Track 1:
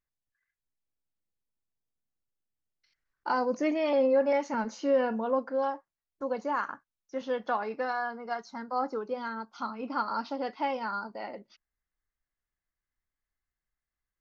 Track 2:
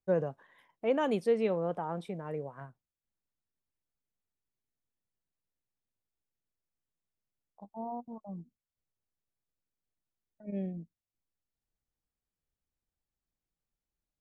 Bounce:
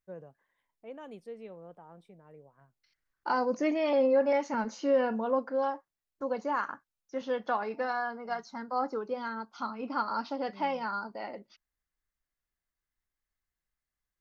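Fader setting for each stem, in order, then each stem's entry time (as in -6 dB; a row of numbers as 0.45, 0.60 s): -0.5, -16.0 dB; 0.00, 0.00 s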